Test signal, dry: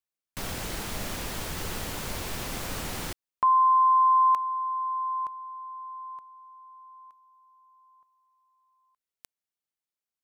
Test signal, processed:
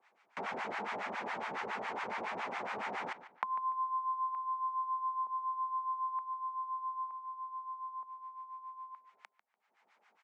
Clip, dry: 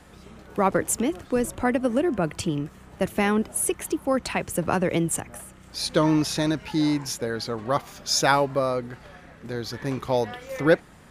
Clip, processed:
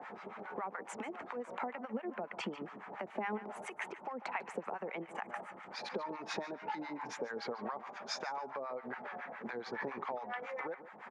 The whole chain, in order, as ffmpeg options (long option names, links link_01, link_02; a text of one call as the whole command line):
ffmpeg -i in.wav -filter_complex "[0:a]alimiter=limit=-15dB:level=0:latency=1:release=458,acompressor=mode=upward:threshold=-36dB:ratio=2.5:attack=0.43:release=371:knee=2.83:detection=peak,acrossover=split=340 2100:gain=0.0708 1 0.0708[link_01][link_02][link_03];[link_01][link_02][link_03]amix=inputs=3:normalize=0,acompressor=threshold=-39dB:ratio=16:attack=6.8:release=189:knee=1:detection=peak,highpass=frequency=120:width=0.5412,highpass=frequency=120:width=1.3066,equalizer=frequency=150:width_type=q:width=4:gain=-5,equalizer=frequency=210:width_type=q:width=4:gain=8,equalizer=frequency=310:width_type=q:width=4:gain=-8,equalizer=frequency=530:width_type=q:width=4:gain=-4,equalizer=frequency=860:width_type=q:width=4:gain=6,equalizer=frequency=2200:width_type=q:width=4:gain=5,lowpass=frequency=7100:width=0.5412,lowpass=frequency=7100:width=1.3066,asplit=2[link_04][link_05];[link_05]adelay=146,lowpass=frequency=4400:poles=1,volume=-13.5dB,asplit=2[link_06][link_07];[link_07]adelay=146,lowpass=frequency=4400:poles=1,volume=0.32,asplit=2[link_08][link_09];[link_09]adelay=146,lowpass=frequency=4400:poles=1,volume=0.32[link_10];[link_06][link_08][link_10]amix=inputs=3:normalize=0[link_11];[link_04][link_11]amix=inputs=2:normalize=0,acrossover=split=800[link_12][link_13];[link_12]aeval=exprs='val(0)*(1-1/2+1/2*cos(2*PI*7.2*n/s))':channel_layout=same[link_14];[link_13]aeval=exprs='val(0)*(1-1/2-1/2*cos(2*PI*7.2*n/s))':channel_layout=same[link_15];[link_14][link_15]amix=inputs=2:normalize=0,volume=8dB" out.wav